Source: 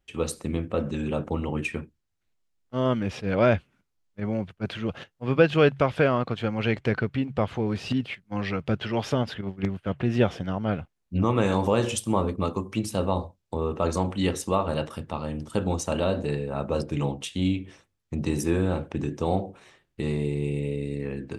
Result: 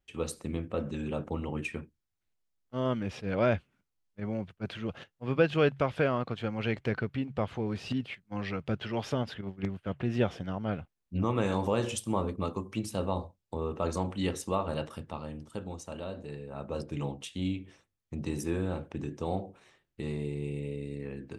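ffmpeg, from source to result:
-af "volume=1.06,afade=t=out:st=14.98:d=0.7:silence=0.398107,afade=t=in:st=16.28:d=0.65:silence=0.473151"

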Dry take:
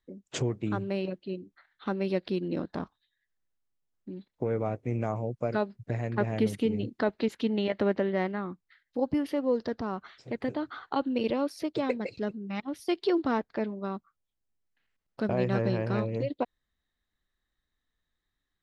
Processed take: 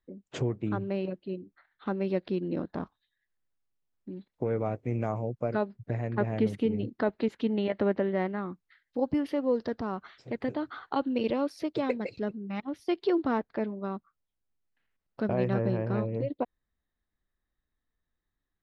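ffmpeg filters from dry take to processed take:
-af "asetnsamples=n=441:p=0,asendcmd='2.81 lowpass f 3300;4.32 lowpass f 5300;5.31 lowpass f 2200;8.38 lowpass f 4900;12.21 lowpass f 2500;15.54 lowpass f 1200',lowpass=f=2000:p=1"

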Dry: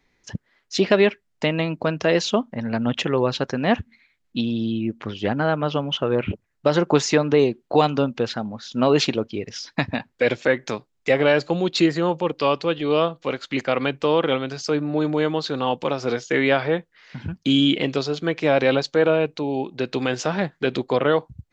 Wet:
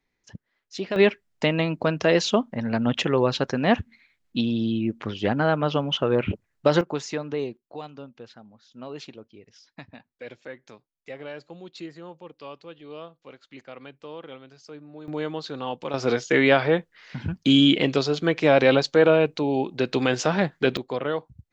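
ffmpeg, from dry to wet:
-af "asetnsamples=n=441:p=0,asendcmd='0.96 volume volume -0.5dB;6.81 volume volume -11.5dB;7.57 volume volume -20dB;15.08 volume volume -8dB;15.94 volume volume 1dB;20.77 volume volume -8dB',volume=0.266"

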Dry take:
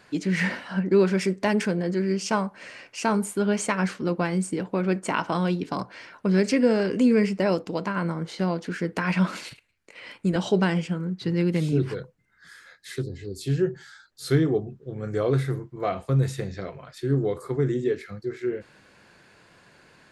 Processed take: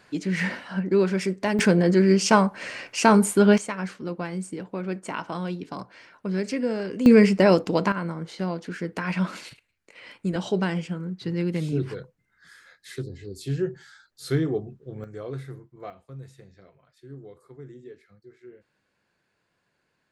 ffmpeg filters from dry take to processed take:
-af "asetnsamples=n=441:p=0,asendcmd='1.59 volume volume 7dB;3.58 volume volume -6dB;7.06 volume volume 6dB;7.92 volume volume -3dB;15.04 volume volume -11.5dB;15.9 volume volume -19dB',volume=0.841"

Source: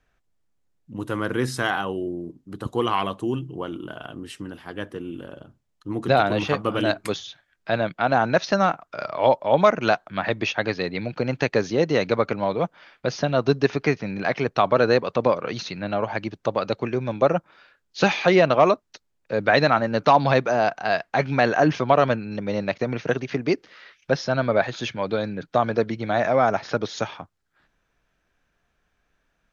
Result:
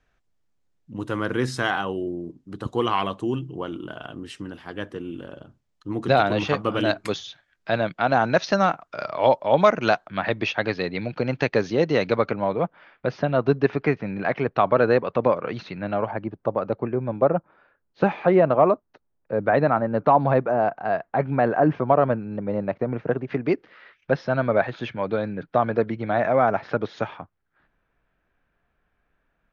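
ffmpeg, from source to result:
-af "asetnsamples=n=441:p=0,asendcmd='10.07 lowpass f 4700;12.31 lowpass f 2300;16.11 lowpass f 1200;23.3 lowpass f 2300',lowpass=7800"

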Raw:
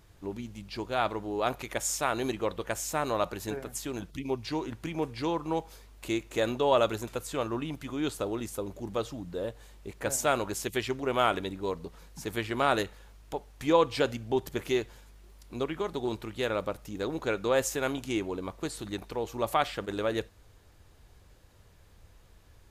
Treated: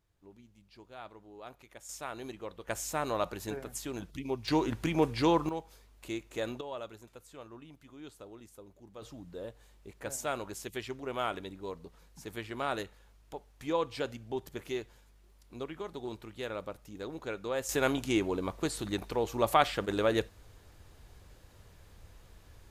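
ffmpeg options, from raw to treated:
-af "asetnsamples=n=441:p=0,asendcmd='1.89 volume volume -11.5dB;2.68 volume volume -3dB;4.48 volume volume 4.5dB;5.49 volume volume -7dB;6.61 volume volume -17dB;9.02 volume volume -8dB;17.69 volume volume 2dB',volume=0.119"

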